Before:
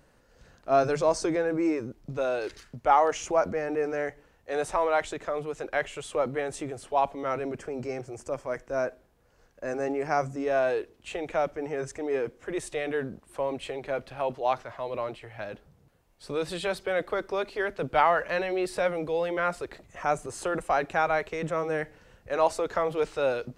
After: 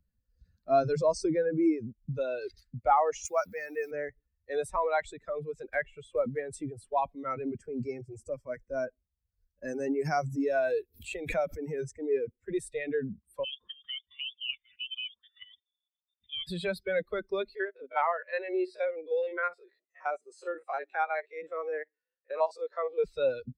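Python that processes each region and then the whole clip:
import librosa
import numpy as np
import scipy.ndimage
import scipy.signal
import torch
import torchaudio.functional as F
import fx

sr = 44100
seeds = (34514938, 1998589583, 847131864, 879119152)

y = fx.chain(x, sr, fx.tilt_eq(slope=3.5),
    fx.sample_gate(floor_db=-44.5), at=(3.25, 3.91))
y = fx.chain(y, sr, fx.block_float(bits=5),
    fx.lowpass(hz=6500.0, slope=12),
    fx.dynamic_eq(hz=4600.0, q=1.6, threshold_db=-54.0, ratio=4.0, max_db=-8), at=(5.73, 6.53))
y = fx.chain(y, sr, fx.high_shelf(hz=5400.0, db=9.5),
    fx.pre_swell(db_per_s=97.0), at=(9.64, 11.83))
y = fx.chain(y, sr, fx.low_shelf(hz=420.0, db=-7.0),
    fx.level_steps(step_db=12),
    fx.freq_invert(carrier_hz=3600), at=(13.44, 16.47))
y = fx.chain(y, sr, fx.spec_steps(hold_ms=50),
    fx.highpass(hz=330.0, slope=24),
    fx.air_absorb(metres=67.0), at=(17.55, 23.04))
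y = fx.bin_expand(y, sr, power=2.0)
y = fx.low_shelf(y, sr, hz=320.0, db=6.0)
y = fx.band_squash(y, sr, depth_pct=40)
y = F.gain(torch.from_numpy(y), 1.5).numpy()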